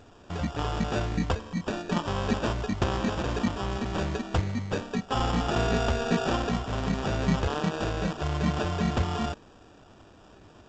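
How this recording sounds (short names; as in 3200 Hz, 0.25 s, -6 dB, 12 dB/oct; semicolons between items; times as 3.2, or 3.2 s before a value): aliases and images of a low sample rate 2100 Hz, jitter 0%; G.722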